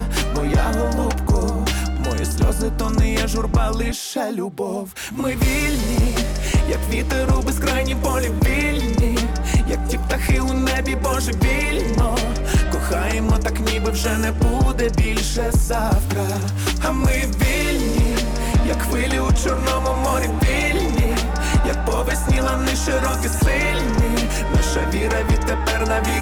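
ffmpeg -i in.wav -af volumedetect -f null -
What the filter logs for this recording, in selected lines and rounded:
mean_volume: -18.5 dB
max_volume: -9.7 dB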